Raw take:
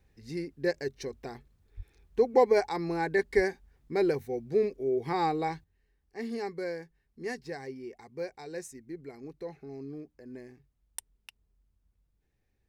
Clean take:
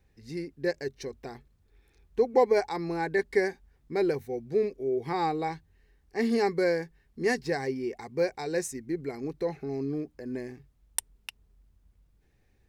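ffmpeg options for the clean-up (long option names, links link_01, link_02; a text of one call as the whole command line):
ffmpeg -i in.wav -filter_complex "[0:a]asplit=3[link_01][link_02][link_03];[link_01]afade=type=out:start_time=1.76:duration=0.02[link_04];[link_02]highpass=frequency=140:width=0.5412,highpass=frequency=140:width=1.3066,afade=type=in:start_time=1.76:duration=0.02,afade=type=out:start_time=1.88:duration=0.02[link_05];[link_03]afade=type=in:start_time=1.88:duration=0.02[link_06];[link_04][link_05][link_06]amix=inputs=3:normalize=0,asplit=3[link_07][link_08][link_09];[link_07]afade=type=out:start_time=3.35:duration=0.02[link_10];[link_08]highpass=frequency=140:width=0.5412,highpass=frequency=140:width=1.3066,afade=type=in:start_time=3.35:duration=0.02,afade=type=out:start_time=3.47:duration=0.02[link_11];[link_09]afade=type=in:start_time=3.47:duration=0.02[link_12];[link_10][link_11][link_12]amix=inputs=3:normalize=0,asetnsamples=nb_out_samples=441:pad=0,asendcmd='5.64 volume volume 9.5dB',volume=0dB" out.wav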